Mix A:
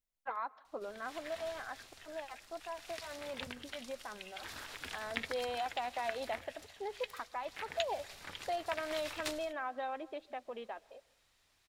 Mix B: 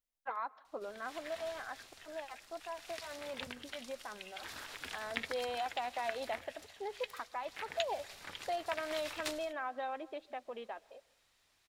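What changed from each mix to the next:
master: add low-shelf EQ 140 Hz −5 dB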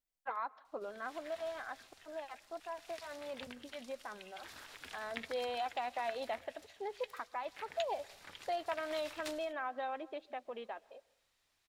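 background −5.5 dB

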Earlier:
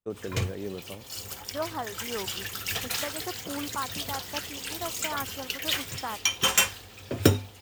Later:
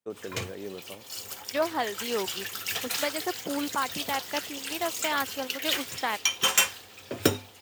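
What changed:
second voice: remove transistor ladder low-pass 1,600 Hz, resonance 40%
master: add high-pass filter 320 Hz 6 dB per octave

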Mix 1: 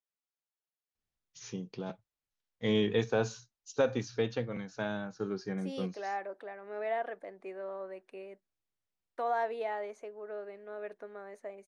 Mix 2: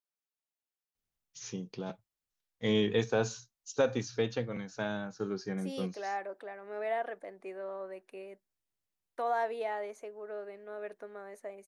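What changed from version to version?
master: remove high-frequency loss of the air 59 metres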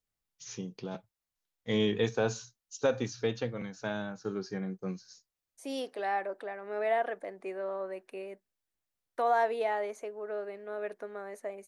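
first voice: entry −0.95 s
second voice +4.5 dB

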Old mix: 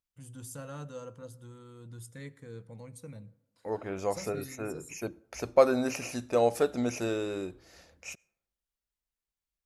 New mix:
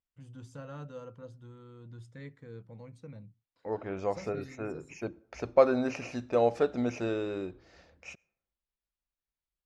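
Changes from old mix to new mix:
first voice: send off
master: add high-frequency loss of the air 160 metres

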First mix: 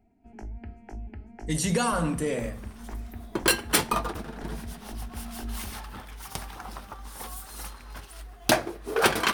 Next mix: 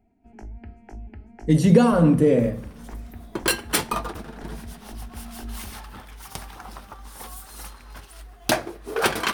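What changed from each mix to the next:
speech: add graphic EQ with 10 bands 125 Hz +11 dB, 250 Hz +10 dB, 500 Hz +9 dB, 8,000 Hz −9 dB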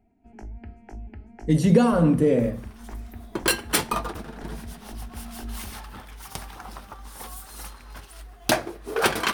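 speech: send off

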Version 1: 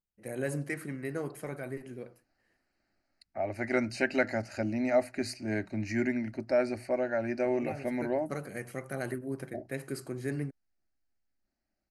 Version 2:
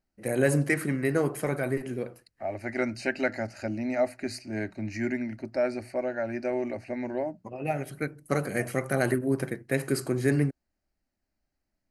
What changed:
first voice +10.0 dB
second voice: entry −0.95 s

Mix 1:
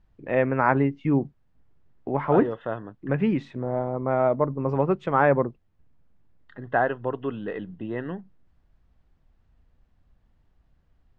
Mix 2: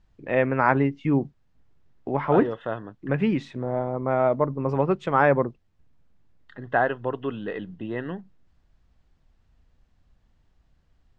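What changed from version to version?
master: add high-shelf EQ 3,700 Hz +10.5 dB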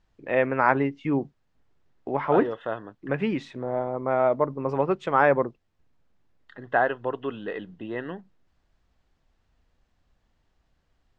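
master: add bass and treble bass −7 dB, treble 0 dB

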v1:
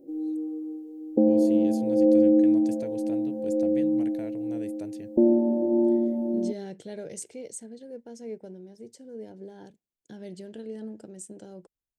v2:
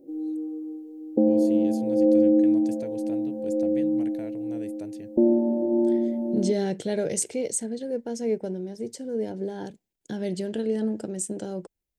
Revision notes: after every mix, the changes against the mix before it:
second voice +11.5 dB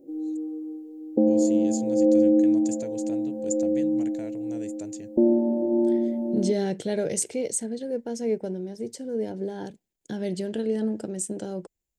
first voice: add low-pass with resonance 7,100 Hz, resonance Q 13

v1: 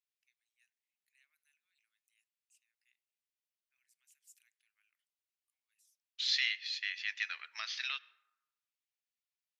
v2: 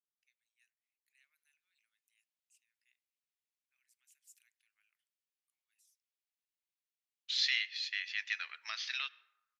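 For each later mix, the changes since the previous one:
second voice: entry +1.10 s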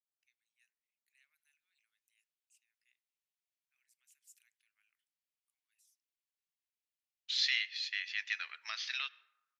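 nothing changed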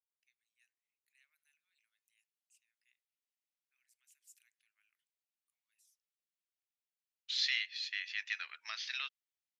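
reverb: off

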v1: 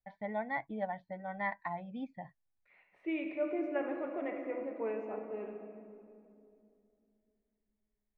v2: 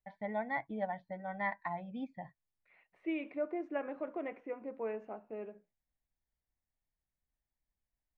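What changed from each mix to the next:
reverb: off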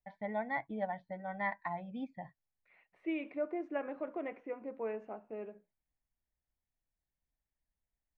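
nothing changed

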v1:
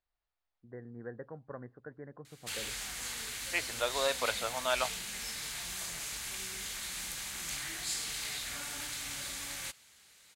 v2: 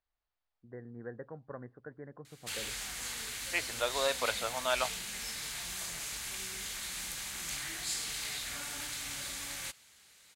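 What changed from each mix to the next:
nothing changed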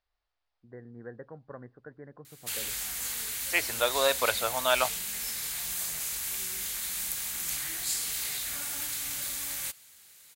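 second voice +5.5 dB
master: remove high-frequency loss of the air 53 metres

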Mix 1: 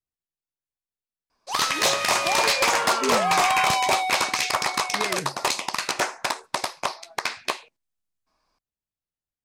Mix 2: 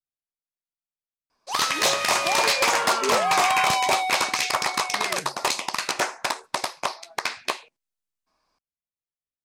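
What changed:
speech −6.5 dB
master: add low-shelf EQ 87 Hz −6 dB

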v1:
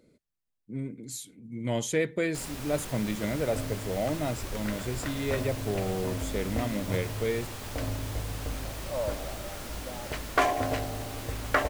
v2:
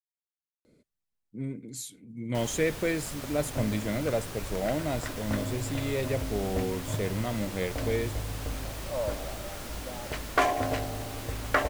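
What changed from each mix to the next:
speech: entry +0.65 s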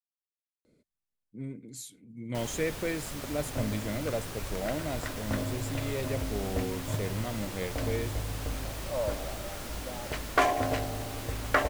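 speech −4.0 dB

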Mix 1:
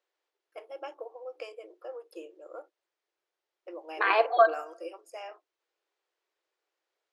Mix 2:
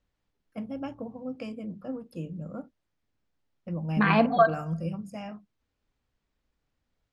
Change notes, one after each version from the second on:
master: remove linear-phase brick-wall high-pass 320 Hz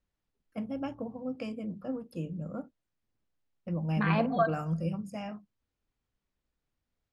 second voice −7.0 dB

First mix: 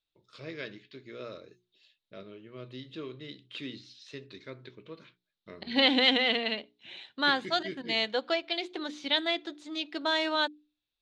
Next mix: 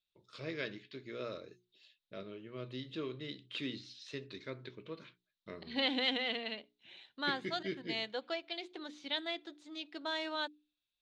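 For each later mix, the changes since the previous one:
second voice −9.5 dB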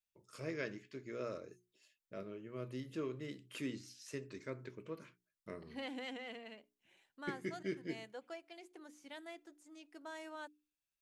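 second voice −8.5 dB
master: remove low-pass with resonance 3,800 Hz, resonance Q 6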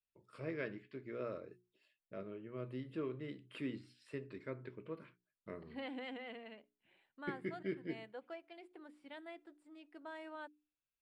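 master: add moving average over 7 samples

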